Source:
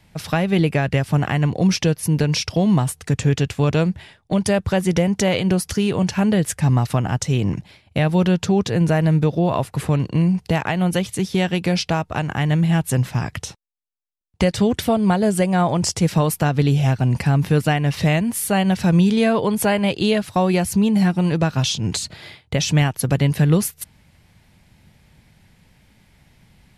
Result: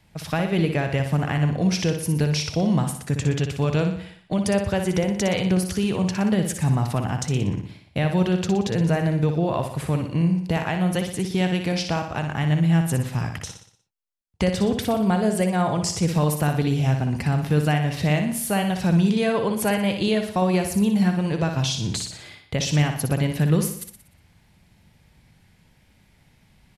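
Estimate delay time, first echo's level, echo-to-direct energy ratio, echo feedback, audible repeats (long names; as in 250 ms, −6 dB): 60 ms, −7.0 dB, −6.0 dB, 50%, 5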